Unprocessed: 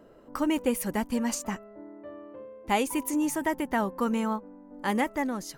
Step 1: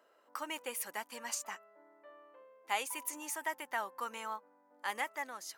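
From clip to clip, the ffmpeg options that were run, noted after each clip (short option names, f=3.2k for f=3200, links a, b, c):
-af "highpass=930,volume=-4.5dB"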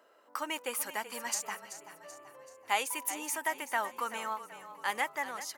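-filter_complex "[0:a]asplit=6[a][b][c][d][e][f];[b]adelay=382,afreqshift=-32,volume=-13dB[g];[c]adelay=764,afreqshift=-64,volume=-19.6dB[h];[d]adelay=1146,afreqshift=-96,volume=-26.1dB[i];[e]adelay=1528,afreqshift=-128,volume=-32.7dB[j];[f]adelay=1910,afreqshift=-160,volume=-39.2dB[k];[a][g][h][i][j][k]amix=inputs=6:normalize=0,volume=4.5dB"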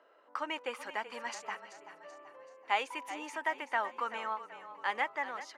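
-af "highpass=250,lowpass=3.2k"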